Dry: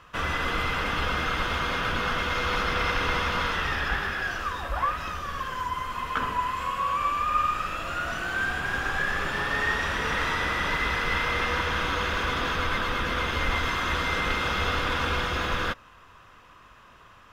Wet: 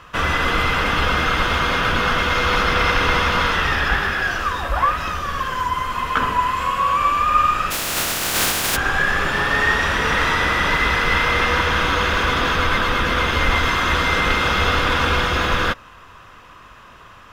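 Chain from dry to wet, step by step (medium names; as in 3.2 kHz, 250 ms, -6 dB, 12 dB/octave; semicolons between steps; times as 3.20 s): 7.70–8.75 s: spectral contrast reduction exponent 0.22; trim +8.5 dB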